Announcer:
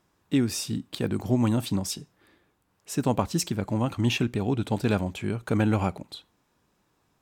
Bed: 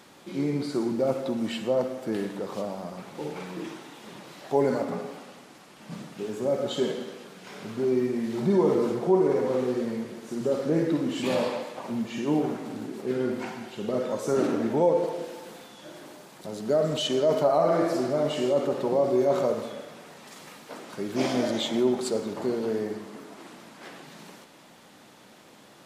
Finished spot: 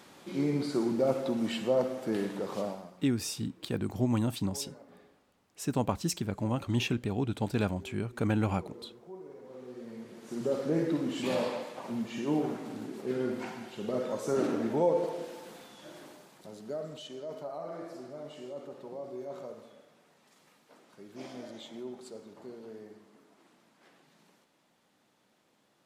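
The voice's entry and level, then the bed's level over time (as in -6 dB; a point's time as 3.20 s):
2.70 s, -5.0 dB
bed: 2.68 s -2 dB
3.12 s -25 dB
9.38 s -25 dB
10.36 s -4.5 dB
16.02 s -4.5 dB
17.09 s -18 dB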